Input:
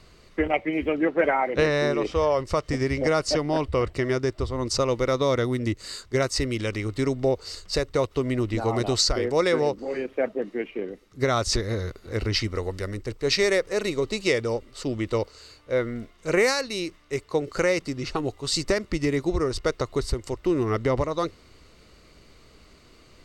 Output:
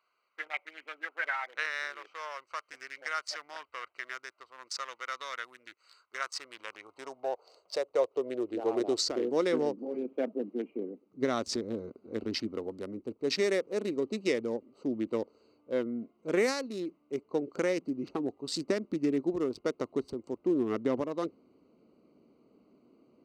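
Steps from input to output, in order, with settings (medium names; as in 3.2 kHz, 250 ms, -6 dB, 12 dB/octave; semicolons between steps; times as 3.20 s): local Wiener filter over 25 samples; high-pass sweep 1.5 kHz -> 240 Hz, 5.90–9.56 s; trim -8.5 dB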